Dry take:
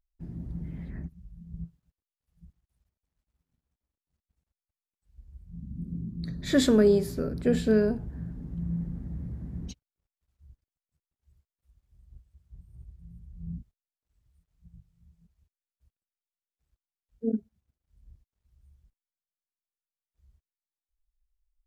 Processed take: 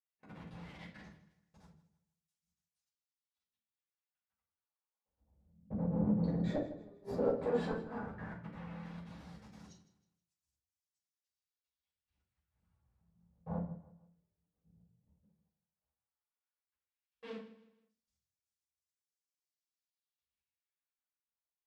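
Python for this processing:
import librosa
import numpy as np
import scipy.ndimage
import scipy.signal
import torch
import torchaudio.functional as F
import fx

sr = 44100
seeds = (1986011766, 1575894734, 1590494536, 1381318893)

y = fx.spec_quant(x, sr, step_db=15)
y = scipy.signal.sosfilt(scipy.signal.butter(2, 74.0, 'highpass', fs=sr, output='sos'), y)
y = fx.level_steps(y, sr, step_db=20)
y = fx.leveller(y, sr, passes=2)
y = fx.rider(y, sr, range_db=4, speed_s=0.5)
y = fx.filter_lfo_bandpass(y, sr, shape='sine', hz=0.12, low_hz=460.0, high_hz=6900.0, q=1.6)
y = fx.gate_flip(y, sr, shuts_db=-28.0, range_db=-41)
y = fx.echo_feedback(y, sr, ms=158, feedback_pct=36, wet_db=-16)
y = fx.room_shoebox(y, sr, seeds[0], volume_m3=240.0, walls='furnished', distance_m=5.5)
y = y * 10.0 ** (-2.5 / 20.0)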